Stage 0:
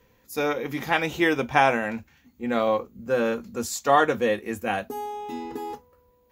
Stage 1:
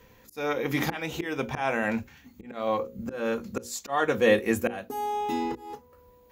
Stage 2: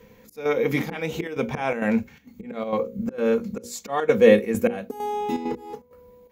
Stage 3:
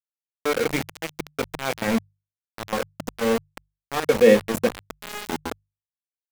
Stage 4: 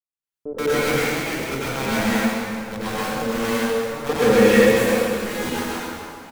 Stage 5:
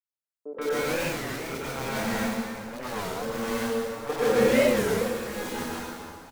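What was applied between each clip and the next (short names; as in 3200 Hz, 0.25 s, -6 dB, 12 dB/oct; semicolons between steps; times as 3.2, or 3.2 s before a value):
auto swell 0.513 s; notches 60/120/180/240/300/360/420/480/540 Hz; gain +6 dB
small resonant body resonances 200/460/2200 Hz, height 10 dB, ringing for 35 ms; chopper 2.2 Hz, depth 60%, duty 80%
sample gate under -21.5 dBFS; notches 50/100/150 Hz
bands offset in time lows, highs 0.13 s, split 540 Hz; plate-style reverb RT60 2.5 s, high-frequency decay 0.8×, pre-delay 80 ms, DRR -9.5 dB; gain -3.5 dB
three bands offset in time mids, highs, lows 30/130 ms, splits 240/2500 Hz; record warp 33 1/3 rpm, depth 250 cents; gain -6 dB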